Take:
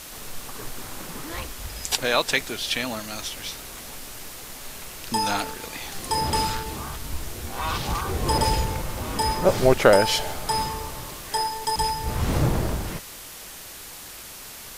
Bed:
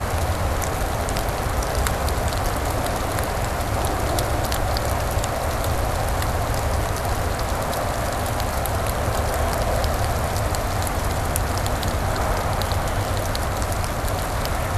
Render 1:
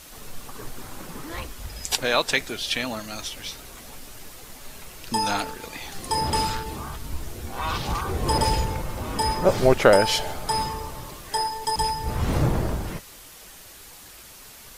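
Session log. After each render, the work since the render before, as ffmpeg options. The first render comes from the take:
-af "afftdn=nr=6:nf=-40"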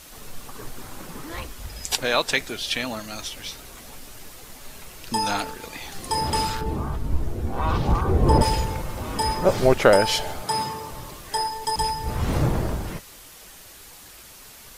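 -filter_complex "[0:a]asettb=1/sr,asplit=3[a][b][c];[a]atrim=end=6.614[d];[b]atrim=start=6.61:end=8.42,asetpts=PTS-STARTPTS,afade=t=in:d=0.004:c=qsin,afade=t=out:st=1.806:d=0.004:c=qsin,tiltshelf=f=1.3k:g=8.5[e];[c]atrim=start=8.416[f];[d][e]acrossfade=d=0.004:c1=hsin:c2=qsin[g];[g][f]acrossfade=d=0.004:c1=qsin:c2=hsin,asettb=1/sr,asplit=3[h][i][j];[h]atrim=end=10.424[k];[i]atrim=start=10.42:end=10.91,asetpts=PTS-STARTPTS,afade=t=in:d=0.004:c=qsin,afade=t=out:st=0.486:d=0.004:c=qsin,highpass=f=100:w=0.5412,highpass=f=100:w=1.3066[l];[j]atrim=start=10.906[m];[k][l]acrossfade=d=0.004:c1=hsin:c2=qsin[n];[n][m]acrossfade=d=0.004:c1=qsin:c2=hsin"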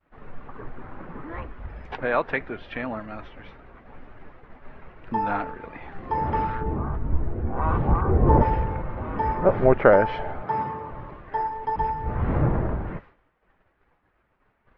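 -af "lowpass=f=1.9k:w=0.5412,lowpass=f=1.9k:w=1.3066,agate=range=-33dB:threshold=-40dB:ratio=3:detection=peak"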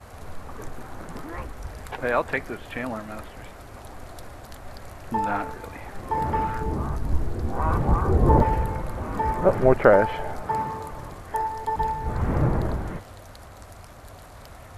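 -filter_complex "[1:a]volume=-20.5dB[a];[0:a][a]amix=inputs=2:normalize=0"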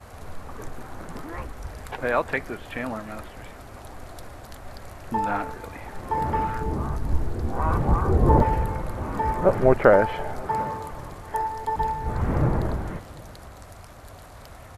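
-af "aecho=1:1:736:0.0668"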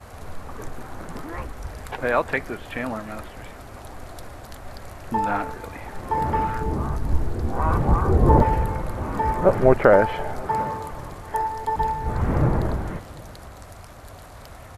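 -af "volume=2dB,alimiter=limit=-2dB:level=0:latency=1"

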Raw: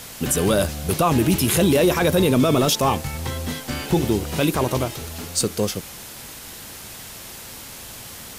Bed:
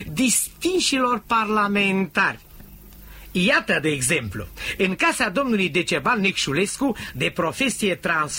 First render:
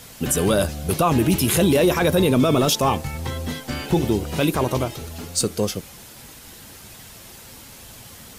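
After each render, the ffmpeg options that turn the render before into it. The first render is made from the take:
-af "afftdn=nr=6:nf=-38"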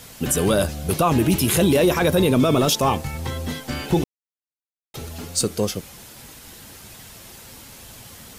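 -filter_complex "[0:a]asplit=3[a][b][c];[a]atrim=end=4.04,asetpts=PTS-STARTPTS,afade=t=out:st=4.036:d=0.004:c=hsin[d];[b]atrim=start=4.04:end=4.94,asetpts=PTS-STARTPTS,volume=0[e];[c]atrim=start=4.94,asetpts=PTS-STARTPTS,afade=t=in:d=0.004:c=hsin[f];[d][e][f]concat=n=3:v=0:a=1"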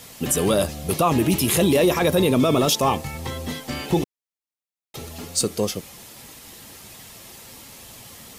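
-af "lowshelf=f=100:g=-7.5,bandreject=f=1.5k:w=9.5"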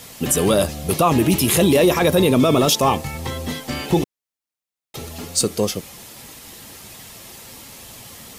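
-af "volume=3dB"

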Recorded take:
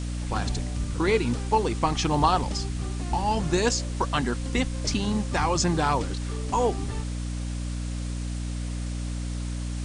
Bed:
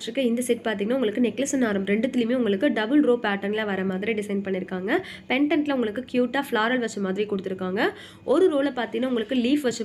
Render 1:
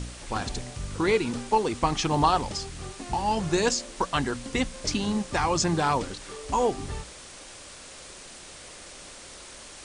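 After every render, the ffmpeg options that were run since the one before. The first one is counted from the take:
-af "bandreject=f=60:t=h:w=4,bandreject=f=120:t=h:w=4,bandreject=f=180:t=h:w=4,bandreject=f=240:t=h:w=4,bandreject=f=300:t=h:w=4"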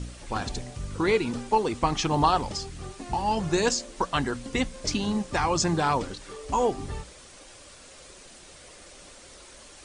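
-af "afftdn=nr=6:nf=-45"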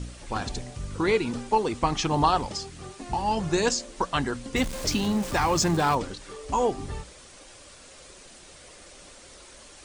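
-filter_complex "[0:a]asettb=1/sr,asplit=3[a][b][c];[a]atrim=end=2.464[d];[b]atrim=start=2.46:end=3.02,asetpts=PTS-STARTPTS,afade=t=in:d=0.004:c=qsin,afade=t=out:st=0.556:d=0.004:c=qsin,highpass=f=110:p=1[e];[c]atrim=start=3.016[f];[d][e]acrossfade=d=0.004:c1=hsin:c2=qsin[g];[g][f]acrossfade=d=0.004:c1=qsin:c2=hsin,asettb=1/sr,asplit=3[h][i][j];[h]atrim=end=4.564[k];[i]atrim=start=4.56:end=5.95,asetpts=PTS-STARTPTS,afade=t=in:d=0.004:c=qsin,afade=t=out:st=1.386:d=0.004:c=qsin,aeval=exprs='val(0)+0.5*0.0266*sgn(val(0))':c=same[l];[j]atrim=start=5.946[m];[k][l]acrossfade=d=0.004:c1=hsin:c2=qsin[n];[n][m]acrossfade=d=0.004:c1=qsin:c2=hsin"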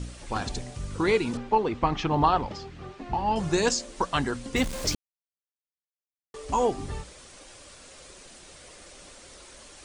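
-filter_complex "[0:a]asettb=1/sr,asplit=3[a][b][c];[a]atrim=end=1.374[d];[b]atrim=start=1.37:end=3.36,asetpts=PTS-STARTPTS,afade=t=in:d=0.004:c=qsin,afade=t=out:st=1.986:d=0.004:c=qsin,lowpass=3k[e];[c]atrim=start=3.356[f];[d][e]acrossfade=d=0.004:c1=hsin:c2=qsin[g];[g][f]acrossfade=d=0.004:c1=qsin:c2=hsin,asplit=3[h][i][j];[h]atrim=end=4.95,asetpts=PTS-STARTPTS,afade=t=out:st=4.946:d=0.004:c=hsin[k];[i]atrim=start=4.95:end=6.34,asetpts=PTS-STARTPTS,volume=0[l];[j]atrim=start=6.34,asetpts=PTS-STARTPTS,afade=t=in:d=0.004:c=hsin[m];[k][l][m]concat=n=3:v=0:a=1"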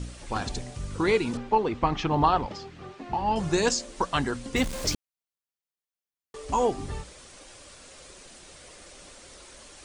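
-filter_complex "[0:a]asettb=1/sr,asplit=3[a][b][c];[a]atrim=end=2.464[d];[b]atrim=start=2.46:end=3.21,asetpts=PTS-STARTPTS,afade=t=in:d=0.004:c=qsin,afade=t=out:st=0.746:d=0.004:c=qsin,highpass=f=120:p=1[e];[c]atrim=start=3.206[f];[d][e]acrossfade=d=0.004:c1=hsin:c2=qsin[g];[g][f]acrossfade=d=0.004:c1=qsin:c2=hsin"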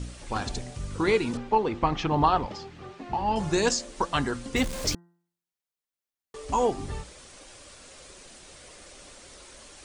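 -af "bandreject=f=172.2:t=h:w=4,bandreject=f=344.4:t=h:w=4,bandreject=f=516.6:t=h:w=4,bandreject=f=688.8:t=h:w=4,bandreject=f=861:t=h:w=4,bandreject=f=1.0332k:t=h:w=4,bandreject=f=1.2054k:t=h:w=4,bandreject=f=1.3776k:t=h:w=4,bandreject=f=1.5498k:t=h:w=4,bandreject=f=1.722k:t=h:w=4,bandreject=f=1.8942k:t=h:w=4"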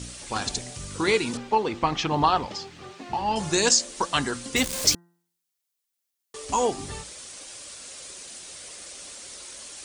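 -af "highpass=f=100:p=1,highshelf=f=3k:g=11.5"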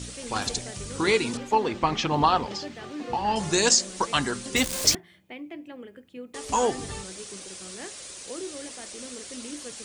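-filter_complex "[1:a]volume=-18dB[a];[0:a][a]amix=inputs=2:normalize=0"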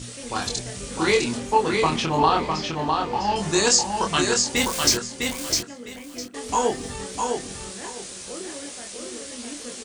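-filter_complex "[0:a]asplit=2[a][b];[b]adelay=25,volume=-3.5dB[c];[a][c]amix=inputs=2:normalize=0,aecho=1:1:655|1310|1965:0.631|0.133|0.0278"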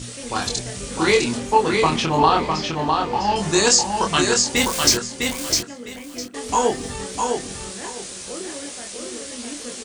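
-af "volume=3dB,alimiter=limit=-2dB:level=0:latency=1"

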